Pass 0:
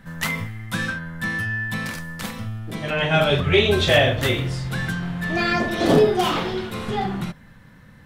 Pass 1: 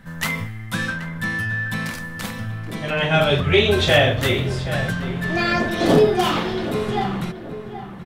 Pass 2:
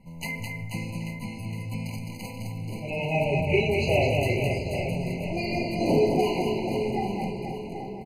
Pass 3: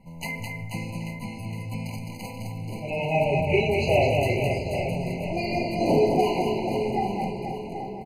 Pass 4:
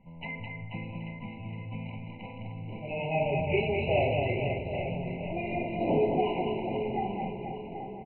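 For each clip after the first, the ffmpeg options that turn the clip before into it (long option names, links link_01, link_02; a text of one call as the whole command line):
ffmpeg -i in.wav -filter_complex "[0:a]asplit=2[link_01][link_02];[link_02]adelay=777,lowpass=frequency=2000:poles=1,volume=-11dB,asplit=2[link_03][link_04];[link_04]adelay=777,lowpass=frequency=2000:poles=1,volume=0.39,asplit=2[link_05][link_06];[link_06]adelay=777,lowpass=frequency=2000:poles=1,volume=0.39,asplit=2[link_07][link_08];[link_08]adelay=777,lowpass=frequency=2000:poles=1,volume=0.39[link_09];[link_01][link_03][link_05][link_07][link_09]amix=inputs=5:normalize=0,volume=1dB" out.wav
ffmpeg -i in.wav -af "aecho=1:1:210|483|837.9|1299|1899:0.631|0.398|0.251|0.158|0.1,afftfilt=real='re*eq(mod(floor(b*sr/1024/1000),2),0)':imag='im*eq(mod(floor(b*sr/1024/1000),2),0)':win_size=1024:overlap=0.75,volume=-7.5dB" out.wav
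ffmpeg -i in.wav -af "equalizer=frequency=760:width=1.5:gain=4.5" out.wav
ffmpeg -i in.wav -af "aresample=8000,aresample=44100,volume=-5.5dB" out.wav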